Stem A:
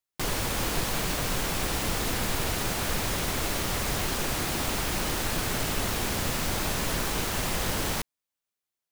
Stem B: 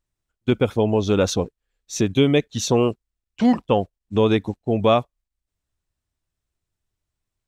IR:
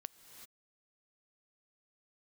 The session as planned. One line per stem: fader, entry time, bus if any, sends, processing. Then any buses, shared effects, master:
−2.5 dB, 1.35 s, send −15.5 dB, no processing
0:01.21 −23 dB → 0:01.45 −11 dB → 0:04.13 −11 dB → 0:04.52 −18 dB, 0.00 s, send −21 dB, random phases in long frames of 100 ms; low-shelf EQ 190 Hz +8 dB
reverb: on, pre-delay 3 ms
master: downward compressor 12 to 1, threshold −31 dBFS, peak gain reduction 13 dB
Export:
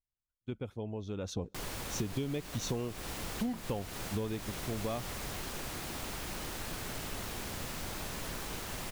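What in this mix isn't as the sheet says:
stem A −2.5 dB → −12.0 dB
stem B: missing random phases in long frames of 100 ms

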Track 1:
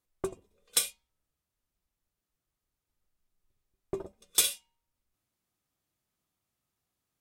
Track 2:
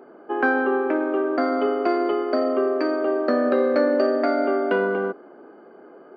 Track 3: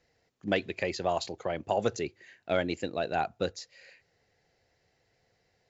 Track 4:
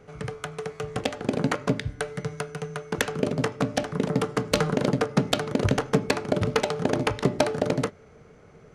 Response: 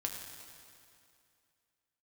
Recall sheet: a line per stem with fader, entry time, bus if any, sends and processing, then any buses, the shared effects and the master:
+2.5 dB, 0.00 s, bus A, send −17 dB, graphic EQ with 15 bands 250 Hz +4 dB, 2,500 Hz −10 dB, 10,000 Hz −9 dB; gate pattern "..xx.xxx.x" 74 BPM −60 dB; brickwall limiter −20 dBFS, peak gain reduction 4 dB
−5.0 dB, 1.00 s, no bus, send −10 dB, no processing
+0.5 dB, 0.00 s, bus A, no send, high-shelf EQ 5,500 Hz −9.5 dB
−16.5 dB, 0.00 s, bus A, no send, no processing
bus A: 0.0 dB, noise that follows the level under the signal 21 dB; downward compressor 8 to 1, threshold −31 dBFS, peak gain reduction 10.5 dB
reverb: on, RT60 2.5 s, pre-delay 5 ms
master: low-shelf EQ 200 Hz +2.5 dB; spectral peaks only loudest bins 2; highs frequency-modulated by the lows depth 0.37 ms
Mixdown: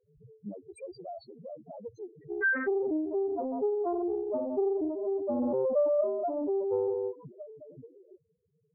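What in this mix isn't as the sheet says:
stem 1 +2.5 dB → −8.5 dB
stem 2: entry 1.00 s → 2.00 s
master: missing low-shelf EQ 200 Hz +2.5 dB

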